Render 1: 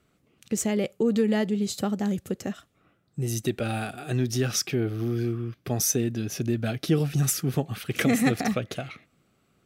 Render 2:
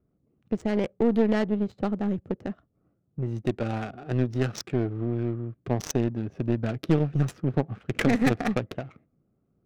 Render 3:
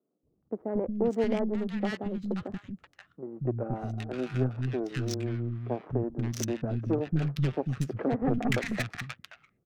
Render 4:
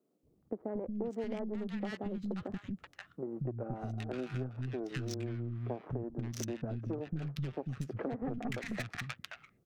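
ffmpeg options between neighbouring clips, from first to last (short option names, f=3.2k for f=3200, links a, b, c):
-af "adynamicsmooth=sensitivity=2.5:basefreq=590,aeval=exprs='0.335*(cos(1*acos(clip(val(0)/0.335,-1,1)))-cos(1*PI/2))+0.0531*(cos(6*acos(clip(val(0)/0.335,-1,1)))-cos(6*PI/2))+0.0075*(cos(7*acos(clip(val(0)/0.335,-1,1)))-cos(7*PI/2))+0.0237*(cos(8*acos(clip(val(0)/0.335,-1,1)))-cos(8*PI/2))':c=same"
-filter_complex "[0:a]acrossover=split=240|1200[a][b][c];[a]adelay=230[d];[c]adelay=530[e];[d][b][e]amix=inputs=3:normalize=0,volume=-2dB"
-af "acompressor=threshold=-38dB:ratio=6,volume=3dB"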